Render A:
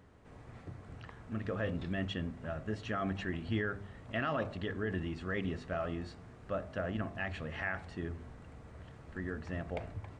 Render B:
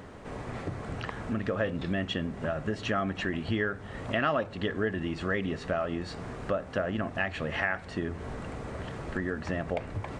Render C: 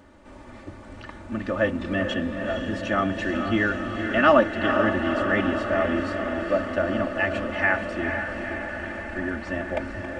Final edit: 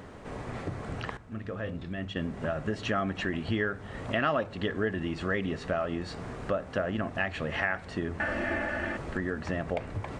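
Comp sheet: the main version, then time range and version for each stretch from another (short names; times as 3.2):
B
1.17–2.16 from A
8.2–8.97 from C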